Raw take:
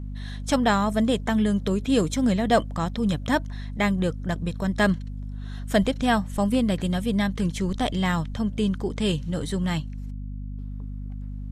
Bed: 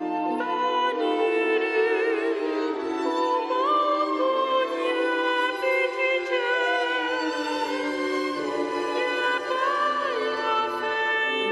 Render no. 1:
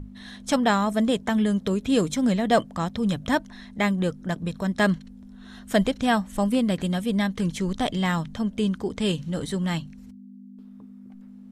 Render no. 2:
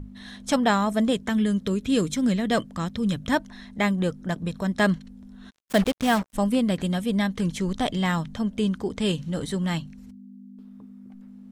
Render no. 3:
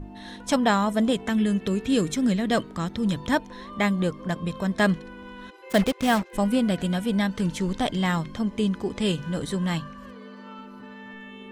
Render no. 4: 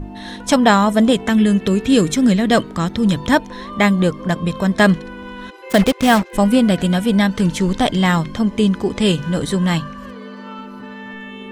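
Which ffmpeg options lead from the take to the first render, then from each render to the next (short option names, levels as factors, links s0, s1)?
-af "bandreject=f=50:t=h:w=6,bandreject=f=100:t=h:w=6,bandreject=f=150:t=h:w=6"
-filter_complex "[0:a]asettb=1/sr,asplit=3[s0][s1][s2];[s0]atrim=end=1.134[s3];[s1]atrim=start=1.13:end=3.32,asetpts=PTS-STARTPTS,afade=t=in:d=0.004:c=qsin,afade=t=out:st=2.186:d=0.004:c=qsin,equalizer=f=760:w=1.5:g=-7.5[s4];[s2]atrim=start=3.316[s5];[s3][s4]acrossfade=d=0.004:c1=hsin:c2=qsin[s6];[s6][s5]acrossfade=d=0.004:c1=qsin:c2=hsin,asplit=3[s7][s8][s9];[s7]afade=t=out:st=5.49:d=0.02[s10];[s8]acrusher=bits=4:mix=0:aa=0.5,afade=t=in:st=5.49:d=0.02,afade=t=out:st=6.33:d=0.02[s11];[s9]afade=t=in:st=6.33:d=0.02[s12];[s10][s11][s12]amix=inputs=3:normalize=0"
-filter_complex "[1:a]volume=0.0944[s0];[0:a][s0]amix=inputs=2:normalize=0"
-af "volume=2.82,alimiter=limit=0.891:level=0:latency=1"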